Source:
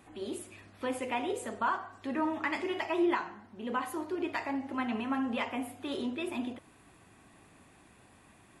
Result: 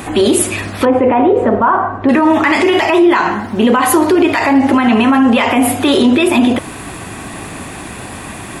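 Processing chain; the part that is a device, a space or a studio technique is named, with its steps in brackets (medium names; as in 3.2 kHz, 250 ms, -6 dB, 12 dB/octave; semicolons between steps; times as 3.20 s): 0.85–2.09 s: low-pass 1.1 kHz 12 dB/octave; loud club master (compression 2:1, threshold -35 dBFS, peak gain reduction 6.5 dB; hard clipper -23.5 dBFS, distortion -41 dB; loudness maximiser +33.5 dB); treble shelf 8.8 kHz +3.5 dB; trim -2 dB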